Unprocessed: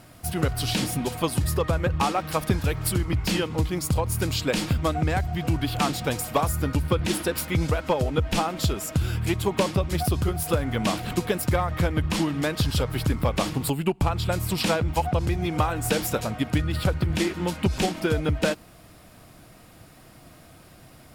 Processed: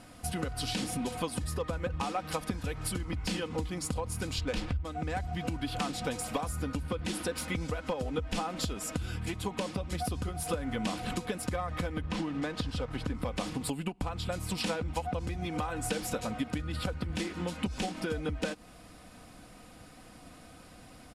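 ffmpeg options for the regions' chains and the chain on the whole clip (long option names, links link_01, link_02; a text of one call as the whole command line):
ffmpeg -i in.wav -filter_complex "[0:a]asettb=1/sr,asplit=3[link_01][link_02][link_03];[link_01]atrim=end=4.384[link_04];[link_02]atrim=start=4.38:end=4.85,asetpts=PTS-STARTPTS,afade=type=in:duration=0.004:curve=qsin,afade=type=out:start_time=0.466:duration=0.004:curve=qsin,lowshelf=frequency=110:width_type=q:width=1.5:gain=12,adynamicsmooth=sensitivity=6:basefreq=1600[link_05];[link_03]atrim=start=4.846[link_06];[link_04][link_05]acrossfade=duration=0.004:curve1=hsin:curve2=qsin[link_07];[link_07][link_06]acrossfade=duration=0.004:curve1=qsin:curve2=hsin,asettb=1/sr,asplit=3[link_08][link_09][link_10];[link_08]atrim=end=12.014[link_11];[link_09]atrim=start=12.01:end=13.15,asetpts=PTS-STARTPTS,afade=type=in:duration=0.004:curve=qsin,afade=type=out:start_time=1.136:duration=0.004:curve=qsin,aemphasis=mode=reproduction:type=50fm,acompressor=mode=upward:threshold=-25dB:ratio=2.5:attack=3.2:release=140:knee=2.83:detection=peak,aeval=exprs='sgn(val(0))*max(abs(val(0))-0.0075,0)':channel_layout=same[link_12];[link_10]atrim=start=13.146[link_13];[link_11][link_12]acrossfade=duration=0.004:curve1=hsin:curve2=qsin[link_14];[link_14][link_13]acrossfade=duration=0.004:curve1=qsin:curve2=hsin,lowpass=frequency=11000:width=0.5412,lowpass=frequency=11000:width=1.3066,acompressor=threshold=-28dB:ratio=6,aecho=1:1:4:0.45,volume=-2.5dB" out.wav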